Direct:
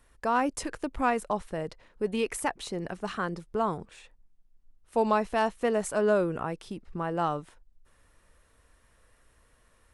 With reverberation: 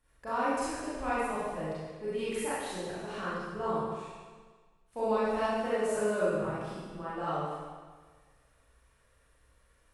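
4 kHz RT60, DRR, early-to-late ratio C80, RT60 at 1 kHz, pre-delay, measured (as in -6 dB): 1.4 s, -11.0 dB, -0.5 dB, 1.5 s, 30 ms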